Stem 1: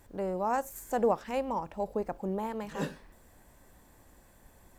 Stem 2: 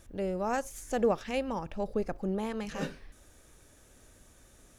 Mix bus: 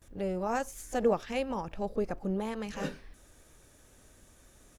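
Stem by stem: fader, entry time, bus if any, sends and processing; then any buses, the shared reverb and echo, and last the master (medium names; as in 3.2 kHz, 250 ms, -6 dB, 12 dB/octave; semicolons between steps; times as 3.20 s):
-14.5 dB, 0.00 s, no send, none
-0.5 dB, 18 ms, polarity flipped, no send, none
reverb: none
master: none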